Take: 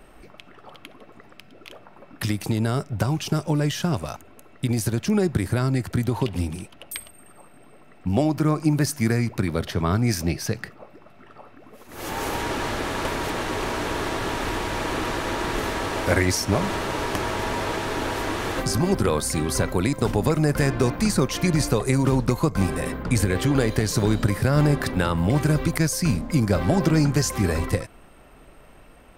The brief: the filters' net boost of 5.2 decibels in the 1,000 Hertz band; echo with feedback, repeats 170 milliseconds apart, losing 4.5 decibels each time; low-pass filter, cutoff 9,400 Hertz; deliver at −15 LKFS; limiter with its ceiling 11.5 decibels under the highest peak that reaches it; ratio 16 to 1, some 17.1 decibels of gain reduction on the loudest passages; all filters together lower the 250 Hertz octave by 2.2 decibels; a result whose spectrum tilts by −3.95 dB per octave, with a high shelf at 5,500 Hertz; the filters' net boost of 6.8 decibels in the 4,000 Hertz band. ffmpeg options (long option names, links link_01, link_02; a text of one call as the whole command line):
ffmpeg -i in.wav -af "lowpass=9400,equalizer=frequency=250:width_type=o:gain=-3.5,equalizer=frequency=1000:width_type=o:gain=6,equalizer=frequency=4000:width_type=o:gain=6,highshelf=frequency=5500:gain=6,acompressor=threshold=-33dB:ratio=16,alimiter=level_in=3dB:limit=-24dB:level=0:latency=1,volume=-3dB,aecho=1:1:170|340|510|680|850|1020|1190|1360|1530:0.596|0.357|0.214|0.129|0.0772|0.0463|0.0278|0.0167|0.01,volume=21.5dB" out.wav